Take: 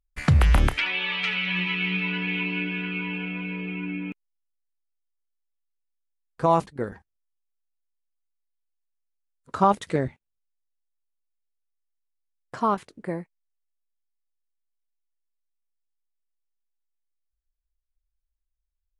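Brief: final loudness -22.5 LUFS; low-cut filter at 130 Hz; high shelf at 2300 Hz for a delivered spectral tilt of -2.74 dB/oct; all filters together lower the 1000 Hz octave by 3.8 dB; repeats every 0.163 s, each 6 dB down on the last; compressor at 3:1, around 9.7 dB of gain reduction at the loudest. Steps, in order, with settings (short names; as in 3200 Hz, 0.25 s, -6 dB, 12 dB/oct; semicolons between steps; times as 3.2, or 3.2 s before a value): HPF 130 Hz; bell 1000 Hz -6 dB; high shelf 2300 Hz +7 dB; compressor 3:1, threshold -30 dBFS; feedback echo 0.163 s, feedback 50%, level -6 dB; gain +8.5 dB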